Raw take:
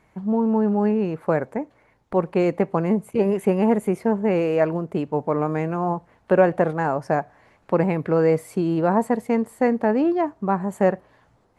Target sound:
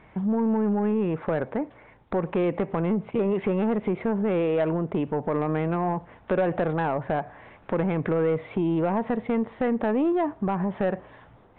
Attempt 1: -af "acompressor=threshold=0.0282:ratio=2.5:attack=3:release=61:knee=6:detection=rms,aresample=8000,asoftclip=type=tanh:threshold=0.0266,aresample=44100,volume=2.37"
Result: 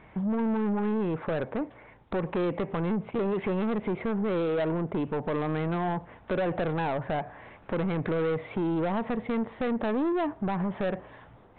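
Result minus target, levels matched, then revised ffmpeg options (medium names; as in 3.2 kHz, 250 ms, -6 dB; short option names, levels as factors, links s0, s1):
saturation: distortion +9 dB
-af "acompressor=threshold=0.0282:ratio=2.5:attack=3:release=61:knee=6:detection=rms,aresample=8000,asoftclip=type=tanh:threshold=0.0708,aresample=44100,volume=2.37"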